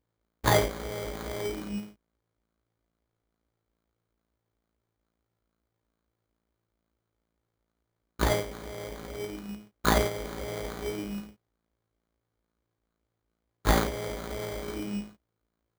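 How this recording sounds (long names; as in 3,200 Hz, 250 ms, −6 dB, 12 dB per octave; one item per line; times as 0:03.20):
a buzz of ramps at a fixed pitch in blocks of 16 samples
phaser sweep stages 4, 2.3 Hz, lowest notch 630–2,800 Hz
aliases and images of a low sample rate 2,700 Hz, jitter 0%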